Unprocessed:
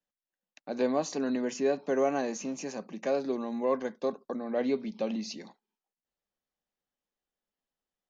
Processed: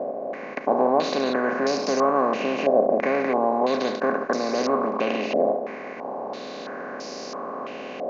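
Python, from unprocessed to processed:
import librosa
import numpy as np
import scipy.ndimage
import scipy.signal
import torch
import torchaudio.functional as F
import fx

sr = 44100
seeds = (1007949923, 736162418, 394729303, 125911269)

y = fx.bin_compress(x, sr, power=0.2)
y = fx.filter_held_lowpass(y, sr, hz=3.0, low_hz=650.0, high_hz=5100.0)
y = F.gain(torch.from_numpy(y), -2.0).numpy()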